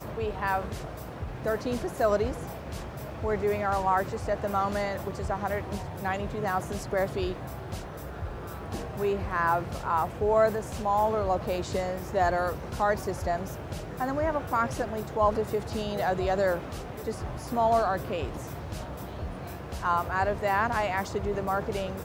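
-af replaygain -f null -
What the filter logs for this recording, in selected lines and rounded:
track_gain = +9.3 dB
track_peak = 0.193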